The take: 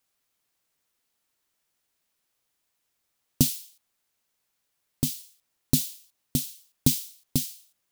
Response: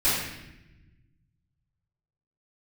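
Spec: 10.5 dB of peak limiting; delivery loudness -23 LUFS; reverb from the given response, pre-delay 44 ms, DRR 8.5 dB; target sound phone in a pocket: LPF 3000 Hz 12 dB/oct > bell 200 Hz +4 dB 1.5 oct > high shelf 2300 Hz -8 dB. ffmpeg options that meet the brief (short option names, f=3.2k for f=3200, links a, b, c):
-filter_complex "[0:a]alimiter=limit=-14dB:level=0:latency=1,asplit=2[a][b];[1:a]atrim=start_sample=2205,adelay=44[c];[b][c]afir=irnorm=-1:irlink=0,volume=-23dB[d];[a][d]amix=inputs=2:normalize=0,lowpass=3k,equalizer=f=200:t=o:w=1.5:g=4,highshelf=f=2.3k:g=-8,volume=12.5dB"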